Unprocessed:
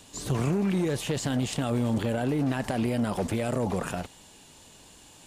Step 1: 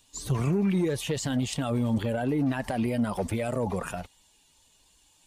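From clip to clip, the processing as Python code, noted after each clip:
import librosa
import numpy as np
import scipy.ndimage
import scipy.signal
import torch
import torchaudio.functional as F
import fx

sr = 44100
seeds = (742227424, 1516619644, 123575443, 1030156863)

y = fx.bin_expand(x, sr, power=1.5)
y = F.gain(torch.from_numpy(y), 2.5).numpy()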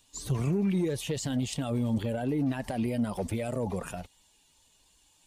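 y = fx.dynamic_eq(x, sr, hz=1300.0, q=0.91, threshold_db=-47.0, ratio=4.0, max_db=-5)
y = F.gain(torch.from_numpy(y), -2.0).numpy()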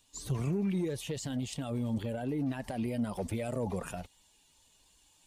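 y = fx.rider(x, sr, range_db=10, speed_s=2.0)
y = F.gain(torch.from_numpy(y), -4.5).numpy()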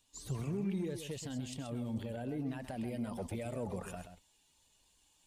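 y = x + 10.0 ** (-9.0 / 20.0) * np.pad(x, (int(130 * sr / 1000.0), 0))[:len(x)]
y = F.gain(torch.from_numpy(y), -5.5).numpy()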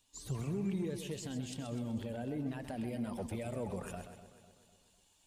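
y = fx.echo_feedback(x, sr, ms=250, feedback_pct=48, wet_db=-14.0)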